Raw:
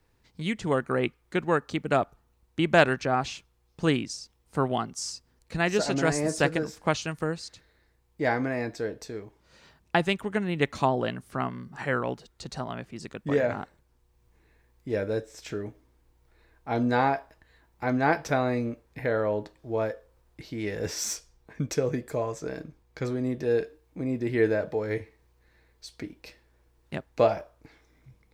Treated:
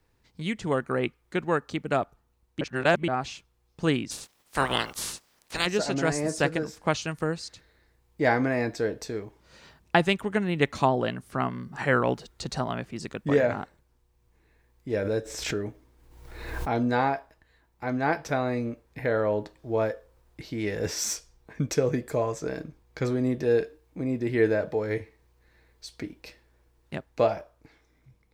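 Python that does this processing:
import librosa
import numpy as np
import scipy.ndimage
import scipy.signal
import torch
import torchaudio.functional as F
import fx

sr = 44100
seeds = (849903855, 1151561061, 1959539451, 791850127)

y = fx.spec_clip(x, sr, under_db=30, at=(4.1, 5.65), fade=0.02)
y = fx.pre_swell(y, sr, db_per_s=49.0, at=(14.97, 16.78))
y = fx.edit(y, sr, fx.reverse_span(start_s=2.61, length_s=0.47), tone=tone)
y = fx.rider(y, sr, range_db=10, speed_s=2.0)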